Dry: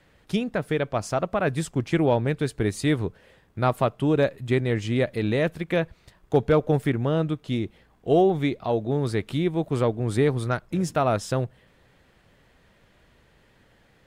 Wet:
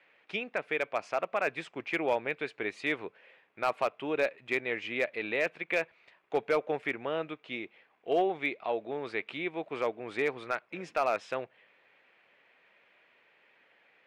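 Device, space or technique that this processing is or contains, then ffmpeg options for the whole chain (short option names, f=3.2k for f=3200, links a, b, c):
megaphone: -af "highpass=490,lowpass=3k,equalizer=f=2.4k:t=o:w=0.55:g=11,asoftclip=type=hard:threshold=-14.5dB,volume=-4.5dB"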